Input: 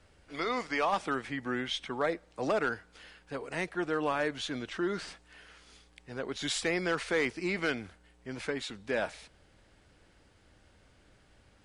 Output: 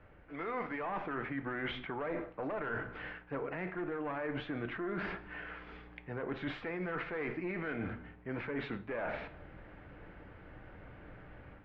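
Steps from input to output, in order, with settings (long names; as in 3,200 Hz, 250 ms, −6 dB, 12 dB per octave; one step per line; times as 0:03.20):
asymmetric clip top −31.5 dBFS, bottom −23.5 dBFS
on a send at −9 dB: convolution reverb RT60 0.60 s, pre-delay 6 ms
on the sum: automatic gain control gain up to 7 dB
brickwall limiter −22.5 dBFS, peak gain reduction 8.5 dB
low-pass filter 2,200 Hz 24 dB per octave
reversed playback
downward compressor, threshold −39 dBFS, peak gain reduction 11.5 dB
reversed playback
level +3.5 dB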